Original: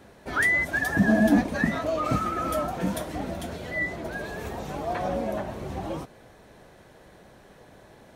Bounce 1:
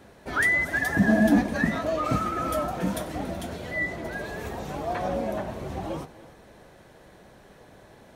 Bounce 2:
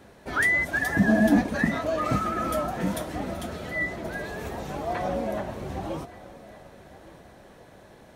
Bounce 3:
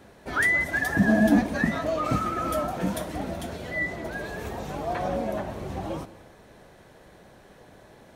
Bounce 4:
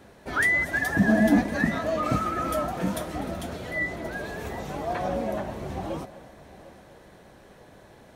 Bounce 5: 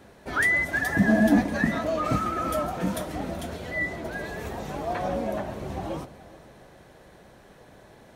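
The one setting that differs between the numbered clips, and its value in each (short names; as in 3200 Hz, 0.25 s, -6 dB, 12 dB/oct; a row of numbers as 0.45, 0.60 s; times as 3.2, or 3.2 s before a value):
multi-head echo, time: 94, 389, 61, 250, 140 ms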